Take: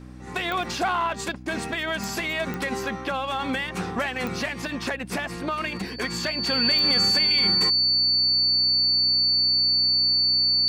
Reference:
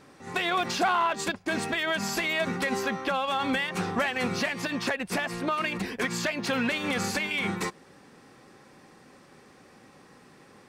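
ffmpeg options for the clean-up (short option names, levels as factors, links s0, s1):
-af "adeclick=t=4,bandreject=f=62.4:t=h:w=4,bandreject=f=124.8:t=h:w=4,bandreject=f=187.2:t=h:w=4,bandreject=f=249.6:t=h:w=4,bandreject=f=312:t=h:w=4,bandreject=f=4500:w=30"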